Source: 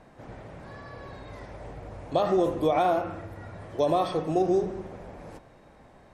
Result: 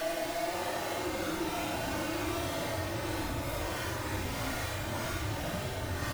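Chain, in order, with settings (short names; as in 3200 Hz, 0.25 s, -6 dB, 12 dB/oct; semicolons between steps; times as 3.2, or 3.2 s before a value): infinite clipping; comb 3.3 ms, depth 37%; Paulstretch 8.8×, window 0.05 s, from 2.93; gain -5.5 dB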